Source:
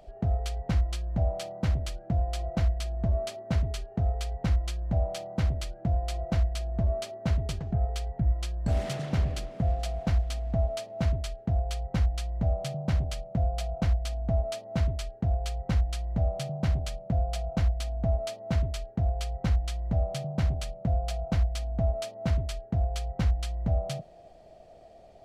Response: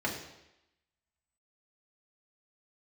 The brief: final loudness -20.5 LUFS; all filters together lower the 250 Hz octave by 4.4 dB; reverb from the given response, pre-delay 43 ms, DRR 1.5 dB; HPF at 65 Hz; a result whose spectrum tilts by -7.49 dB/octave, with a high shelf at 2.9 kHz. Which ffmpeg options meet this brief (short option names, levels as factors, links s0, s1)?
-filter_complex "[0:a]highpass=65,equalizer=f=250:t=o:g=-7,highshelf=f=2900:g=-9,asplit=2[s0][s1];[1:a]atrim=start_sample=2205,adelay=43[s2];[s1][s2]afir=irnorm=-1:irlink=0,volume=0.355[s3];[s0][s3]amix=inputs=2:normalize=0,volume=3.35"